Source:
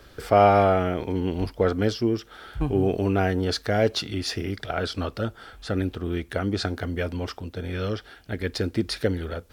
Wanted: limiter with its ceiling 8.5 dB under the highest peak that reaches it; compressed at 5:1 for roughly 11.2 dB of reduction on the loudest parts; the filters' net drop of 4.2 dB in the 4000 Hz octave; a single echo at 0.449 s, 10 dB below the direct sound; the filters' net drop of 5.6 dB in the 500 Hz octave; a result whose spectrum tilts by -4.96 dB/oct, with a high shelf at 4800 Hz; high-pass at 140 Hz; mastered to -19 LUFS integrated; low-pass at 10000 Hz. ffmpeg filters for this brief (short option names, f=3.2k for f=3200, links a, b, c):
-af "highpass=140,lowpass=10k,equalizer=f=500:t=o:g=-7.5,equalizer=f=4k:t=o:g=-9,highshelf=f=4.8k:g=7.5,acompressor=threshold=-28dB:ratio=5,alimiter=limit=-23.5dB:level=0:latency=1,aecho=1:1:449:0.316,volume=16.5dB"